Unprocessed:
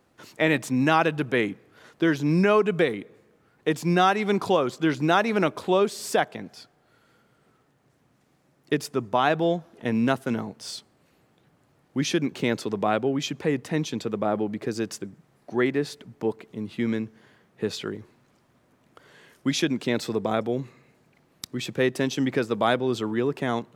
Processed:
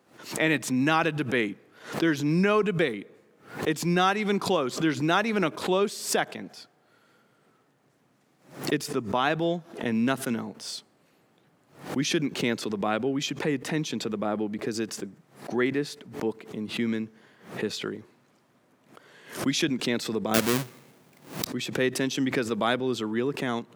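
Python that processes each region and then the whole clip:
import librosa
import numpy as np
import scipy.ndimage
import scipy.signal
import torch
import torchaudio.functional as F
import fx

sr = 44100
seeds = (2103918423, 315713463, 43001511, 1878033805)

y = fx.chain(x, sr, fx.halfwave_hold(),
    fx.high_shelf(hz=8200.0, db=6.5), at=(20.34, 21.45))
y = fx.dynamic_eq(y, sr, hz=660.0, q=0.79, threshold_db=-34.0, ratio=4.0, max_db=-5)
y = scipy.signal.sosfilt(scipy.signal.butter(2, 150.0, 'highpass', fs=sr, output='sos'), y)
y = fx.pre_swell(y, sr, db_per_s=130.0)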